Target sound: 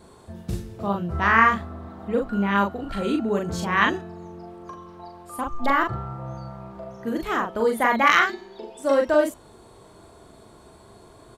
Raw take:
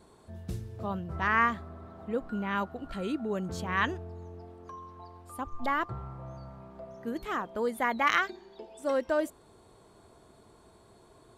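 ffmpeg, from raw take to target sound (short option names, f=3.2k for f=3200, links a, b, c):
-filter_complex "[0:a]asplit=2[a][b];[b]adelay=40,volume=-3dB[c];[a][c]amix=inputs=2:normalize=0,bandreject=f=432.9:t=h:w=4,bandreject=f=865.8:t=h:w=4,bandreject=f=1.2987k:t=h:w=4,bandreject=f=1.7316k:t=h:w=4,bandreject=f=2.1645k:t=h:w=4,bandreject=f=2.5974k:t=h:w=4,bandreject=f=3.0303k:t=h:w=4,bandreject=f=3.4632k:t=h:w=4,bandreject=f=3.8961k:t=h:w=4,bandreject=f=4.329k:t=h:w=4,bandreject=f=4.7619k:t=h:w=4,bandreject=f=5.1948k:t=h:w=4,bandreject=f=5.6277k:t=h:w=4,bandreject=f=6.0606k:t=h:w=4,bandreject=f=6.4935k:t=h:w=4,bandreject=f=6.9264k:t=h:w=4,bandreject=f=7.3593k:t=h:w=4,bandreject=f=7.7922k:t=h:w=4,bandreject=f=8.2251k:t=h:w=4,volume=7dB"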